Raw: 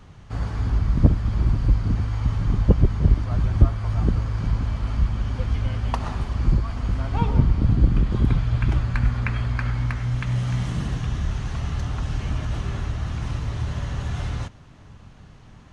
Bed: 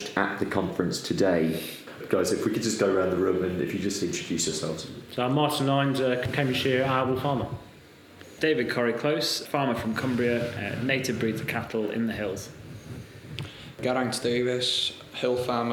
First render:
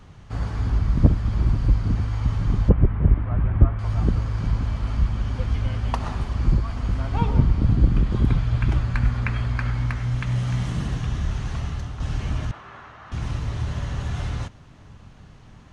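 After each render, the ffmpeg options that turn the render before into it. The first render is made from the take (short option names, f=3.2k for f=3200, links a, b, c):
-filter_complex "[0:a]asettb=1/sr,asplit=3[a][b][c];[a]atrim=end=2.694[d];[b]atrim=start=2.69:end=3.79,asetpts=PTS-STARTPTS,afade=t=in:d=0.004:c=qsin,afade=t=out:st=1.096:d=0.004:c=qsin,lowpass=f=2.4k:w=0.5412,lowpass=f=2.4k:w=1.3066[e];[c]atrim=start=3.786[f];[d][e]acrossfade=d=0.004:c1=hsin:c2=qsin[g];[g][f]acrossfade=d=0.004:c1=qsin:c2=hsin,asettb=1/sr,asplit=3[h][i][j];[h]atrim=end=12.514[k];[i]atrim=start=12.51:end=13.12,asetpts=PTS-STARTPTS,afade=t=in:d=0.004:c=qsin,afade=t=out:st=0.606:d=0.004:c=qsin,bandpass=f=1.2k:t=q:w=1.3[l];[j]atrim=start=13.116[m];[k][l]acrossfade=d=0.004:c1=hsin:c2=qsin[n];[n][m]acrossfade=d=0.004:c1=qsin:c2=hsin,asplit=2[o][p];[o]atrim=end=12,asetpts=PTS-STARTPTS,afade=t=out:st=11.57:d=0.43:silence=0.398107[q];[p]atrim=start=12,asetpts=PTS-STARTPTS,afade=t=in:d=0.004:c=hsin:silence=0.398107[r];[q][r]concat=n=2:v=0:a=1"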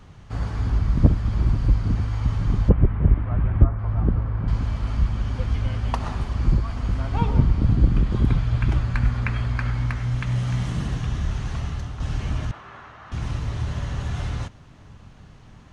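-filter_complex "[0:a]asettb=1/sr,asplit=3[a][b][c];[a]atrim=end=3.644[d];[b]atrim=start=3.64:end=4.48,asetpts=PTS-STARTPTS,afade=t=in:d=0.004:c=qsin,afade=t=out:st=0.836:d=0.004:c=qsin,lowpass=1.6k[e];[c]atrim=start=4.476[f];[d][e]acrossfade=d=0.004:c1=hsin:c2=qsin[g];[g][f]acrossfade=d=0.004:c1=qsin:c2=hsin"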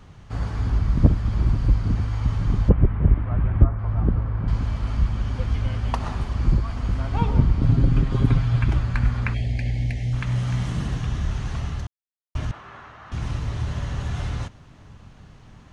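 -filter_complex "[0:a]asettb=1/sr,asplit=3[a][b][c];[a]atrim=end=7.624[d];[b]atrim=start=7.62:end=8.64,asetpts=PTS-STARTPTS,afade=t=in:d=0.004:c=qsin,afade=t=out:st=1.016:d=0.004:c=qsin,aecho=1:1:7.4:0.65,atrim=end_sample=44982[e];[c]atrim=start=8.636[f];[d][e]acrossfade=d=0.004:c1=hsin:c2=qsin[g];[g][f]acrossfade=d=0.004:c1=qsin:c2=hsin,asplit=3[h][i][j];[h]afade=t=out:st=9.33:d=0.02[k];[i]asuperstop=centerf=1200:order=8:qfactor=1.1,afade=t=in:st=9.33:d=0.02,afade=t=out:st=10.12:d=0.02[l];[j]afade=t=in:st=10.12:d=0.02[m];[k][l][m]amix=inputs=3:normalize=0,asplit=3[n][o][p];[n]atrim=end=11.87,asetpts=PTS-STARTPTS,afade=t=out:st=11.866:d=0.004:c=hsin[q];[o]atrim=start=11.87:end=12.35,asetpts=PTS-STARTPTS,volume=0[r];[p]atrim=start=12.35,asetpts=PTS-STARTPTS,afade=t=in:d=0.004:c=hsin[s];[q][r][s]concat=n=3:v=0:a=1"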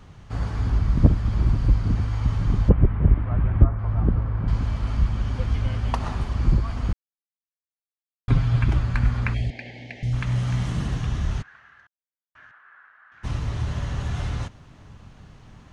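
-filter_complex "[0:a]asettb=1/sr,asplit=3[a][b][c];[a]atrim=end=9.504[d];[b]atrim=start=9.5:end=10.03,asetpts=PTS-STARTPTS,afade=t=in:d=0.004:c=qsin,afade=t=out:st=0.526:d=0.004:c=qsin,highpass=340,lowpass=3.9k[e];[c]atrim=start=10.026[f];[d][e]acrossfade=d=0.004:c1=hsin:c2=qsin[g];[g][f]acrossfade=d=0.004:c1=qsin:c2=hsin,asplit=3[h][i][j];[h]afade=t=out:st=11.41:d=0.02[k];[i]bandpass=f=1.6k:t=q:w=6.7,afade=t=in:st=11.41:d=0.02,afade=t=out:st=13.23:d=0.02[l];[j]afade=t=in:st=13.23:d=0.02[m];[k][l][m]amix=inputs=3:normalize=0,asplit=3[n][o][p];[n]atrim=end=6.93,asetpts=PTS-STARTPTS,afade=t=out:st=6.926:d=0.004:c=hsin[q];[o]atrim=start=6.93:end=8.28,asetpts=PTS-STARTPTS,volume=0[r];[p]atrim=start=8.28,asetpts=PTS-STARTPTS,afade=t=in:d=0.004:c=hsin[s];[q][r][s]concat=n=3:v=0:a=1"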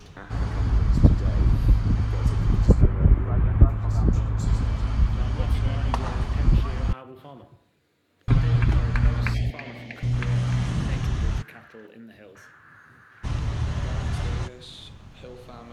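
-filter_complex "[1:a]volume=-17.5dB[a];[0:a][a]amix=inputs=2:normalize=0"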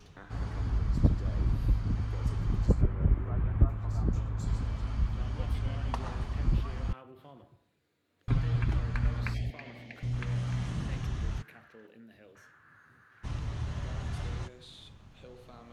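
-af "volume=-8.5dB"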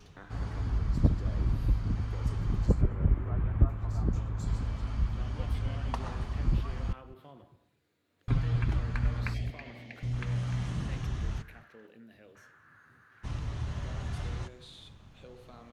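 -filter_complex "[0:a]asplit=2[a][b];[b]adelay=209.9,volume=-20dB,highshelf=f=4k:g=-4.72[c];[a][c]amix=inputs=2:normalize=0"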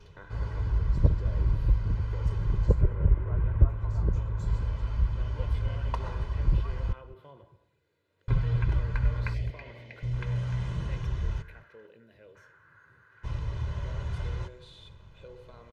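-af "highshelf=f=5.7k:g=-11.5,aecho=1:1:2:0.63"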